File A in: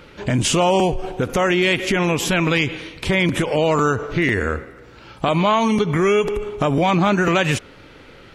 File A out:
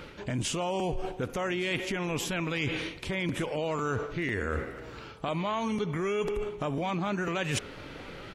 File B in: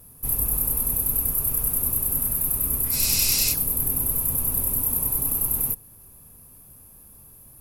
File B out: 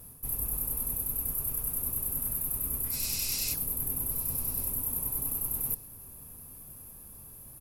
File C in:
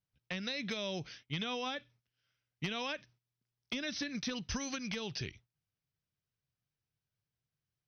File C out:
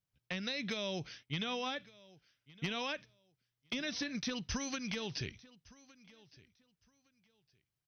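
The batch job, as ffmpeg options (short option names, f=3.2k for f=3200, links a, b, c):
-af "areverse,acompressor=threshold=-29dB:ratio=6,areverse,aecho=1:1:1162|2324:0.0794|0.0175"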